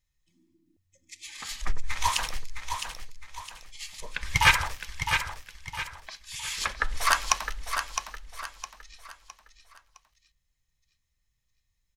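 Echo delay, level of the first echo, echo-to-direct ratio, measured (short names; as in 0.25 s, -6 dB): 0.661 s, -7.0 dB, -6.5 dB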